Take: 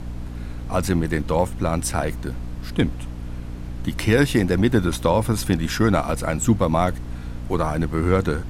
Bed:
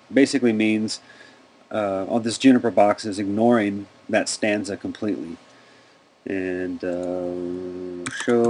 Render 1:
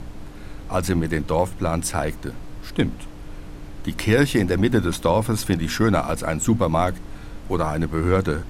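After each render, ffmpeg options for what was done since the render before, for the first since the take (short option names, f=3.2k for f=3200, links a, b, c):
-af "bandreject=f=60:t=h:w=6,bandreject=f=120:t=h:w=6,bandreject=f=180:t=h:w=6,bandreject=f=240:t=h:w=6"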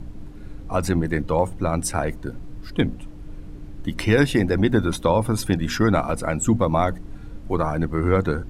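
-af "afftdn=nr=10:nf=-37"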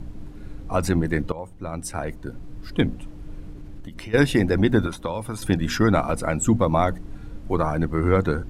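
-filter_complex "[0:a]asplit=3[a][b][c];[a]afade=t=out:st=3.51:d=0.02[d];[b]acompressor=threshold=-32dB:ratio=12:attack=3.2:release=140:knee=1:detection=peak,afade=t=in:st=3.51:d=0.02,afade=t=out:st=4.13:d=0.02[e];[c]afade=t=in:st=4.13:d=0.02[f];[d][e][f]amix=inputs=3:normalize=0,asettb=1/sr,asplit=3[g][h][i];[g]atrim=end=4.864[j];[h]atrim=start=4.86:end=5.42,asetpts=PTS-STARTPTS,afade=t=in:d=0.004:c=qsin,afade=t=out:st=0.556:d=0.004:c=qsin,acrossover=split=620|1700[k][l][m];[k]acompressor=threshold=-30dB:ratio=4[n];[l]acompressor=threshold=-33dB:ratio=4[o];[m]acompressor=threshold=-40dB:ratio=4[p];[n][o][p]amix=inputs=3:normalize=0[q];[i]atrim=start=5.416[r];[j][q]acrossfade=d=0.004:c1=hsin:c2=qsin[s];[s][r]acrossfade=d=0.004:c1=qsin:c2=hsin,asplit=2[t][u];[t]atrim=end=1.32,asetpts=PTS-STARTPTS,afade=t=out:st=1.316:d=0.004:c=hsin:silence=0.141254[v];[u]atrim=start=1.32,asetpts=PTS-STARTPTS,afade=t=in:d=1.43:silence=0.141254[w];[v][w]concat=n=2:v=0:a=1"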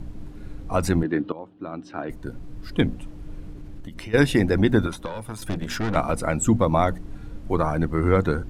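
-filter_complex "[0:a]asettb=1/sr,asplit=3[a][b][c];[a]atrim=end=1.034[d];[b]atrim=start=1.03:end=2.1,asetpts=PTS-STARTPTS,afade=t=in:d=0.004:c=qsin,afade=t=out:st=1.066:d=0.004:c=qsin,highpass=220,equalizer=f=300:t=q:w=4:g=7,equalizer=f=520:t=q:w=4:g=-5,equalizer=f=890:t=q:w=4:g=-4,equalizer=f=2.1k:t=q:w=4:g=-10,lowpass=f=3.7k:w=0.5412,lowpass=f=3.7k:w=1.3066[e];[c]atrim=start=2.096[f];[d][e]acrossfade=d=0.004:c1=hsin:c2=qsin[g];[g][f]acrossfade=d=0.004:c1=qsin:c2=hsin,asettb=1/sr,asplit=3[h][i][j];[h]atrim=end=5.054[k];[i]atrim=start=5.05:end=5.96,asetpts=PTS-STARTPTS,afade=t=in:d=0.004:c=qsin,afade=t=out:st=0.906:d=0.004:c=qsin,aeval=exprs='(tanh(12.6*val(0)+0.65)-tanh(0.65))/12.6':c=same[l];[j]atrim=start=5.956[m];[k][l]acrossfade=d=0.004:c1=hsin:c2=qsin[n];[n][m]acrossfade=d=0.004:c1=qsin:c2=hsin"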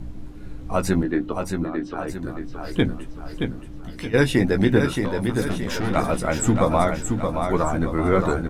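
-filter_complex "[0:a]asplit=2[a][b];[b]adelay=16,volume=-7dB[c];[a][c]amix=inputs=2:normalize=0,aecho=1:1:623|1246|1869|2492|3115|3738:0.531|0.244|0.112|0.0517|0.0238|0.0109"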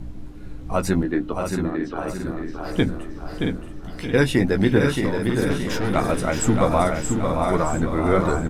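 -af "aecho=1:1:672|1344|2016|2688:0.447|0.156|0.0547|0.0192"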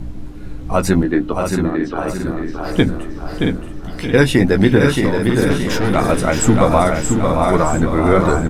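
-af "volume=6.5dB,alimiter=limit=-1dB:level=0:latency=1"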